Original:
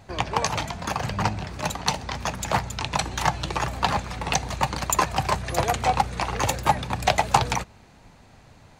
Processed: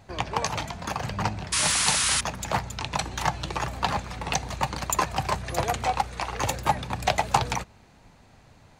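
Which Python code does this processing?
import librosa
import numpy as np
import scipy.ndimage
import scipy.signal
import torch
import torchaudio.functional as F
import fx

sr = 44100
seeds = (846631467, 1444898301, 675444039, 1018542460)

y = fx.spec_paint(x, sr, seeds[0], shape='noise', start_s=1.52, length_s=0.69, low_hz=940.0, high_hz=11000.0, level_db=-21.0)
y = fx.peak_eq(y, sr, hz=160.0, db=-6.0, octaves=2.2, at=(5.86, 6.4))
y = y * 10.0 ** (-3.0 / 20.0)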